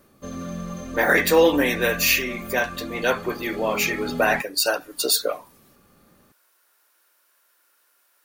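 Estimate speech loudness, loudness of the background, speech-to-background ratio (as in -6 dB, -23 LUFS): -21.5 LUFS, -34.0 LUFS, 12.5 dB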